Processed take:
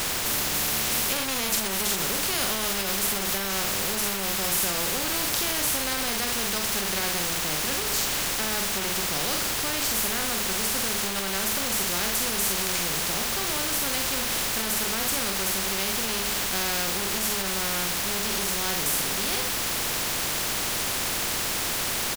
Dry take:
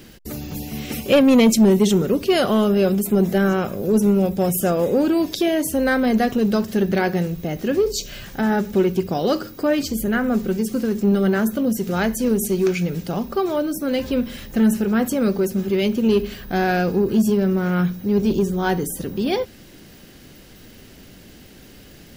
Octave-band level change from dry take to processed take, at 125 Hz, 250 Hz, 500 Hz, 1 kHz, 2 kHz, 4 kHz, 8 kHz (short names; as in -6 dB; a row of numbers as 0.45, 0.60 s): -13.0, -17.5, -14.0, -3.5, +0.5, +6.5, +9.0 dB